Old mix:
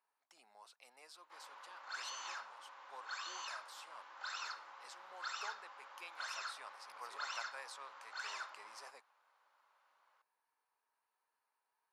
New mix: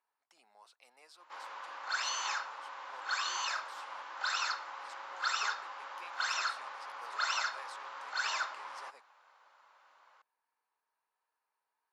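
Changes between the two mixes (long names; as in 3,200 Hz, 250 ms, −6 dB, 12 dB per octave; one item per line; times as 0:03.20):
speech: add high-shelf EQ 8,600 Hz −5 dB
background +10.5 dB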